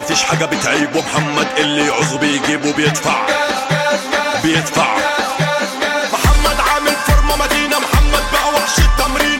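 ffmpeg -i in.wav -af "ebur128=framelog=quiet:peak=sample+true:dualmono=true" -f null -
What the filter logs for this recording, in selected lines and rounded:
Integrated loudness:
  I:         -11.3 LUFS
  Threshold: -21.3 LUFS
Loudness range:
  LRA:         1.5 LU
  Threshold: -31.5 LUFS
  LRA low:   -12.0 LUFS
  LRA high:  -10.5 LUFS
Sample peak:
  Peak:       -2.8 dBFS
True peak:
  Peak:       -2.1 dBFS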